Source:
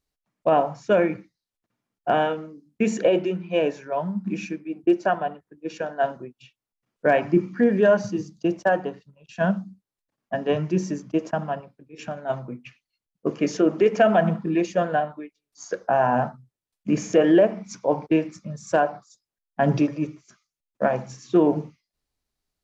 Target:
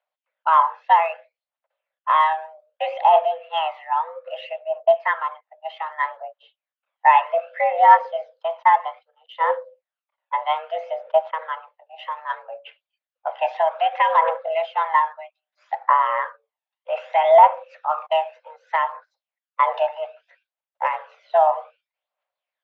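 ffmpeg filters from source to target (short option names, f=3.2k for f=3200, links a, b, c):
-af "highpass=f=240:t=q:w=0.5412,highpass=f=240:t=q:w=1.307,lowpass=f=3.2k:t=q:w=0.5176,lowpass=f=3.2k:t=q:w=0.7071,lowpass=f=3.2k:t=q:w=1.932,afreqshift=320,aphaser=in_gain=1:out_gain=1:delay=1.2:decay=0.51:speed=0.63:type=triangular,volume=1.5dB"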